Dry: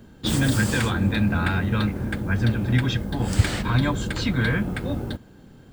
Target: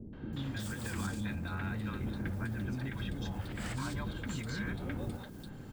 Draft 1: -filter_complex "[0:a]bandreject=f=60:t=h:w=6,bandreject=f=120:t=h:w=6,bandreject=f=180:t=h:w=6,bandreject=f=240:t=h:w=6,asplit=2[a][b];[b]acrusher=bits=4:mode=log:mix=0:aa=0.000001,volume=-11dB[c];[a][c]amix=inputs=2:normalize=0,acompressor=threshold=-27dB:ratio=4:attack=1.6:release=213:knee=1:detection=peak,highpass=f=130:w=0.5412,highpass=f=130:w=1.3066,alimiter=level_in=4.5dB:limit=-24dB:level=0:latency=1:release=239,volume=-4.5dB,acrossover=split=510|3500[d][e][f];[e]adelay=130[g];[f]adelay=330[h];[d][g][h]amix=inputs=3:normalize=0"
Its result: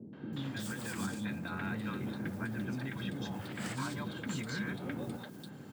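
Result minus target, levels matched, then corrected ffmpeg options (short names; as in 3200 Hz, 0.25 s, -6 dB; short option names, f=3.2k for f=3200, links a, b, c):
125 Hz band -3.0 dB
-filter_complex "[0:a]bandreject=f=60:t=h:w=6,bandreject=f=120:t=h:w=6,bandreject=f=180:t=h:w=6,bandreject=f=240:t=h:w=6,asplit=2[a][b];[b]acrusher=bits=4:mode=log:mix=0:aa=0.000001,volume=-11dB[c];[a][c]amix=inputs=2:normalize=0,acompressor=threshold=-27dB:ratio=4:attack=1.6:release=213:knee=1:detection=peak,alimiter=level_in=4.5dB:limit=-24dB:level=0:latency=1:release=239,volume=-4.5dB,acrossover=split=510|3500[d][e][f];[e]adelay=130[g];[f]adelay=330[h];[d][g][h]amix=inputs=3:normalize=0"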